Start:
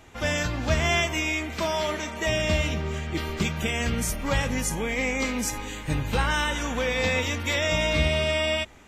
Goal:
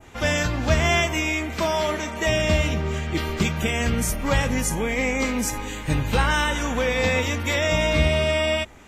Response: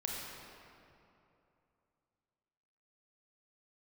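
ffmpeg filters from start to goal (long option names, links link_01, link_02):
-af "adynamicequalizer=threshold=0.01:dfrequency=3900:dqfactor=0.72:tfrequency=3900:tqfactor=0.72:attack=5:release=100:ratio=0.375:range=2:mode=cutabove:tftype=bell,volume=4dB"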